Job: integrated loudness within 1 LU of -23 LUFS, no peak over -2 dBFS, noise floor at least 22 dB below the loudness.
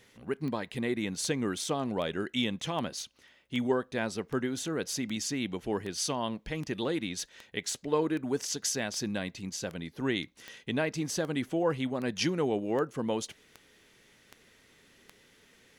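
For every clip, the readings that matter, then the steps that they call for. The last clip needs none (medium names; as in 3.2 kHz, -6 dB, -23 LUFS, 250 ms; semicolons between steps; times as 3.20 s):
clicks found 20; loudness -32.5 LUFS; peak level -15.0 dBFS; loudness target -23.0 LUFS
-> de-click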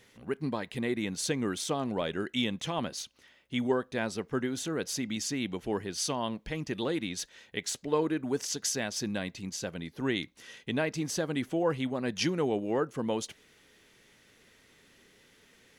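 clicks found 0; loudness -32.5 LUFS; peak level -15.0 dBFS; loudness target -23.0 LUFS
-> trim +9.5 dB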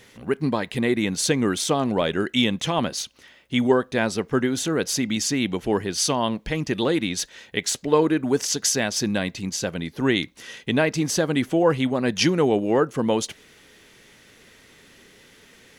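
loudness -23.0 LUFS; peak level -5.5 dBFS; noise floor -53 dBFS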